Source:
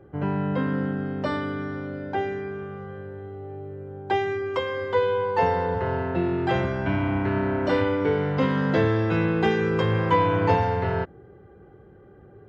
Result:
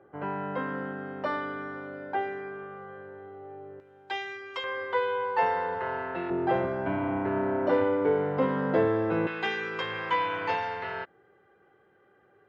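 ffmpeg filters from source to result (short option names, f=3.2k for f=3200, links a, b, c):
-af "asetnsamples=n=441:p=0,asendcmd='3.8 bandpass f 3600;4.64 bandpass f 1500;6.3 bandpass f 620;9.27 bandpass f 2500',bandpass=f=1.1k:t=q:w=0.72:csg=0"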